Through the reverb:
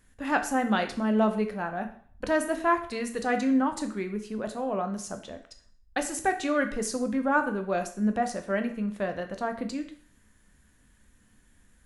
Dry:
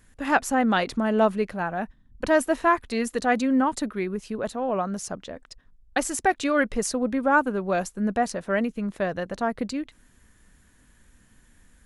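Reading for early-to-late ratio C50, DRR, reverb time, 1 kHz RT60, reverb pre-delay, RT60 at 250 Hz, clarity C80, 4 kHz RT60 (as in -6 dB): 11.5 dB, 6.5 dB, 0.50 s, 0.55 s, 10 ms, 0.45 s, 14.5 dB, 0.50 s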